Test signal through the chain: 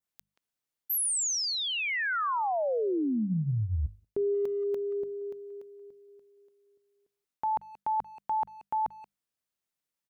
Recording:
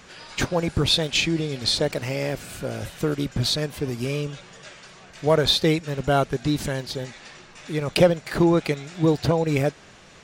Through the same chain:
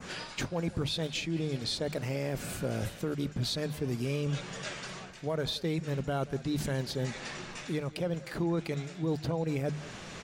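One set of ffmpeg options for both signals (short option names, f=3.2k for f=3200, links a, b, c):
-filter_complex "[0:a]equalizer=f=170:t=o:w=1.5:g=4.5,bandreject=f=50:t=h:w=6,bandreject=f=100:t=h:w=6,bandreject=f=150:t=h:w=6,bandreject=f=200:t=h:w=6,areverse,acompressor=threshold=-31dB:ratio=6,areverse,adynamicequalizer=threshold=0.00501:dfrequency=3600:dqfactor=0.71:tfrequency=3600:tqfactor=0.71:attack=5:release=100:ratio=0.375:range=2:mode=cutabove:tftype=bell,asplit=2[a][b];[b]adelay=180,highpass=300,lowpass=3.4k,asoftclip=type=hard:threshold=-30dB,volume=-17dB[c];[a][c]amix=inputs=2:normalize=0,alimiter=level_in=3dB:limit=-24dB:level=0:latency=1:release=259,volume=-3dB,volume=4dB"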